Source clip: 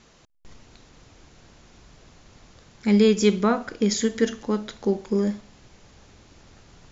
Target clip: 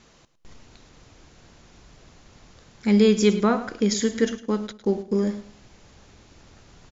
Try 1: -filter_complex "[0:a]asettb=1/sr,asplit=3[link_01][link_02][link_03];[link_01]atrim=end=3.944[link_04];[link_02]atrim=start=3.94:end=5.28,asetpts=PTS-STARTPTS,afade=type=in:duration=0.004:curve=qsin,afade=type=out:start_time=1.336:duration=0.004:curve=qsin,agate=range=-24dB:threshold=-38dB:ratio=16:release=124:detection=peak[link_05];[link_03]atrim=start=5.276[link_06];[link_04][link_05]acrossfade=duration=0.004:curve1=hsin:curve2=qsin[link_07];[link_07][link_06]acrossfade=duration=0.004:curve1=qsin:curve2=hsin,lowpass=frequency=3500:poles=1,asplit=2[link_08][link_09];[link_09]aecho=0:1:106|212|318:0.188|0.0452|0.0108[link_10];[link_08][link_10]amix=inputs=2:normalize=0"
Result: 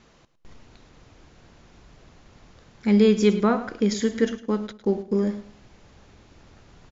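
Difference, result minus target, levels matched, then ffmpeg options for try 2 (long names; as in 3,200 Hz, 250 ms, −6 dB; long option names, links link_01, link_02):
4,000 Hz band −3.0 dB
-filter_complex "[0:a]asettb=1/sr,asplit=3[link_01][link_02][link_03];[link_01]atrim=end=3.944[link_04];[link_02]atrim=start=3.94:end=5.28,asetpts=PTS-STARTPTS,afade=type=in:duration=0.004:curve=qsin,afade=type=out:start_time=1.336:duration=0.004:curve=qsin,agate=range=-24dB:threshold=-38dB:ratio=16:release=124:detection=peak[link_05];[link_03]atrim=start=5.276[link_06];[link_04][link_05]acrossfade=duration=0.004:curve1=hsin:curve2=qsin[link_07];[link_07][link_06]acrossfade=duration=0.004:curve1=qsin:curve2=hsin,asplit=2[link_08][link_09];[link_09]aecho=0:1:106|212|318:0.188|0.0452|0.0108[link_10];[link_08][link_10]amix=inputs=2:normalize=0"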